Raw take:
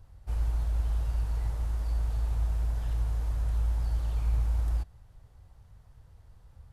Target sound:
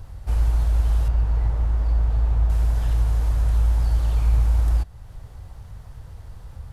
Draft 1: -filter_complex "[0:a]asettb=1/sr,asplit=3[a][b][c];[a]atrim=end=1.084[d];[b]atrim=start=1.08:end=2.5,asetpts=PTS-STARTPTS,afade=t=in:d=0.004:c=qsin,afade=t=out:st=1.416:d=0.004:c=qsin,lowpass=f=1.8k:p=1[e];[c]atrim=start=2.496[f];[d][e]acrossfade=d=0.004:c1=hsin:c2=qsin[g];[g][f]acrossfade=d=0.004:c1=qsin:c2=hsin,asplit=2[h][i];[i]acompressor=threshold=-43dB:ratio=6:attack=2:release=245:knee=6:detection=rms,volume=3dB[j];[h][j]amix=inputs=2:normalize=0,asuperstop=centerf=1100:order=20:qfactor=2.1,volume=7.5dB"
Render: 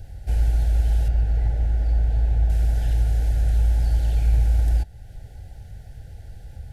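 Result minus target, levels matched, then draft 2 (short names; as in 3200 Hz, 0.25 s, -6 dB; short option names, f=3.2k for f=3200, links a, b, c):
1000 Hz band -3.5 dB
-filter_complex "[0:a]asettb=1/sr,asplit=3[a][b][c];[a]atrim=end=1.084[d];[b]atrim=start=1.08:end=2.5,asetpts=PTS-STARTPTS,afade=t=in:d=0.004:c=qsin,afade=t=out:st=1.416:d=0.004:c=qsin,lowpass=f=1.8k:p=1[e];[c]atrim=start=2.496[f];[d][e]acrossfade=d=0.004:c1=hsin:c2=qsin[g];[g][f]acrossfade=d=0.004:c1=qsin:c2=hsin,asplit=2[h][i];[i]acompressor=threshold=-43dB:ratio=6:attack=2:release=245:knee=6:detection=rms,volume=3dB[j];[h][j]amix=inputs=2:normalize=0,volume=7.5dB"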